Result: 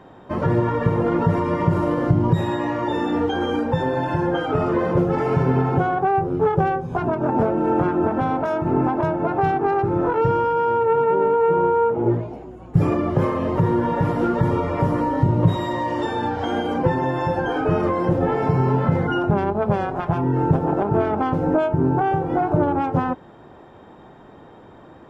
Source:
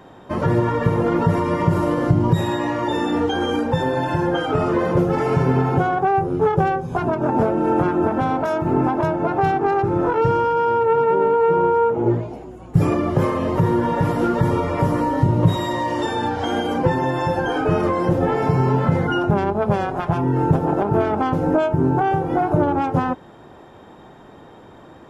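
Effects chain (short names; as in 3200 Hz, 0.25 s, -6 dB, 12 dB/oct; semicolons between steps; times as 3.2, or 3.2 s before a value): high shelf 4800 Hz -11 dB; gain -1 dB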